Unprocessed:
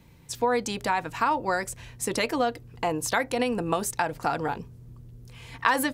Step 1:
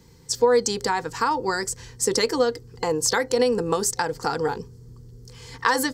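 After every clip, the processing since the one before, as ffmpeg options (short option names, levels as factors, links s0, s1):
-af "superequalizer=7b=2.24:8b=0.398:12b=0.501:14b=3.16:15b=2.51,volume=1.19"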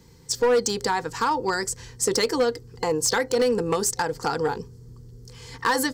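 -af "asoftclip=type=hard:threshold=0.168"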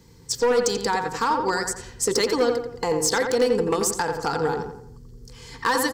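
-filter_complex "[0:a]asplit=2[s0][s1];[s1]adelay=87,lowpass=f=2500:p=1,volume=0.562,asplit=2[s2][s3];[s3]adelay=87,lowpass=f=2500:p=1,volume=0.44,asplit=2[s4][s5];[s5]adelay=87,lowpass=f=2500:p=1,volume=0.44,asplit=2[s6][s7];[s7]adelay=87,lowpass=f=2500:p=1,volume=0.44,asplit=2[s8][s9];[s9]adelay=87,lowpass=f=2500:p=1,volume=0.44[s10];[s0][s2][s4][s6][s8][s10]amix=inputs=6:normalize=0"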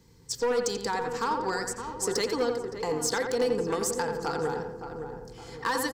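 -filter_complex "[0:a]asplit=2[s0][s1];[s1]adelay=566,lowpass=f=1200:p=1,volume=0.422,asplit=2[s2][s3];[s3]adelay=566,lowpass=f=1200:p=1,volume=0.48,asplit=2[s4][s5];[s5]adelay=566,lowpass=f=1200:p=1,volume=0.48,asplit=2[s6][s7];[s7]adelay=566,lowpass=f=1200:p=1,volume=0.48,asplit=2[s8][s9];[s9]adelay=566,lowpass=f=1200:p=1,volume=0.48,asplit=2[s10][s11];[s11]adelay=566,lowpass=f=1200:p=1,volume=0.48[s12];[s0][s2][s4][s6][s8][s10][s12]amix=inputs=7:normalize=0,volume=0.473"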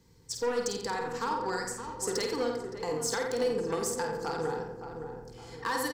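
-filter_complex "[0:a]asplit=2[s0][s1];[s1]adelay=50,volume=0.501[s2];[s0][s2]amix=inputs=2:normalize=0,volume=0.631"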